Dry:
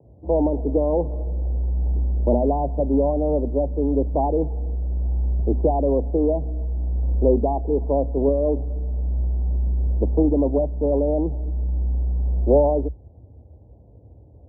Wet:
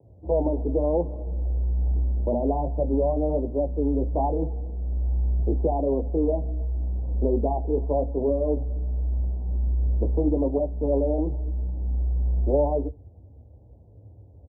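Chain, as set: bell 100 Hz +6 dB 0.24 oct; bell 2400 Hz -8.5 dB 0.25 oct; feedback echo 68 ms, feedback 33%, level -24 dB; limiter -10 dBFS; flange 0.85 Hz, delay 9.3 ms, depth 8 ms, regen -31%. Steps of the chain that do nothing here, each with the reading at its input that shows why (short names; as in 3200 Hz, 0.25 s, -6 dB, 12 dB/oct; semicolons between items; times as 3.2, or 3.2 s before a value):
bell 2400 Hz: input band ends at 720 Hz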